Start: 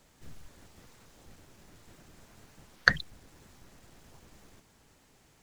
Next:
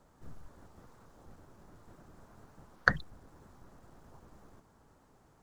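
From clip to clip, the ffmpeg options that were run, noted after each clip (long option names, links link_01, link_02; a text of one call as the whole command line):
ffmpeg -i in.wav -af "highshelf=frequency=1700:width_type=q:width=1.5:gain=-10" out.wav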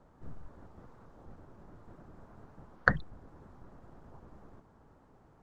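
ffmpeg -i in.wav -af "lowpass=frequency=1400:poles=1,volume=3.5dB" out.wav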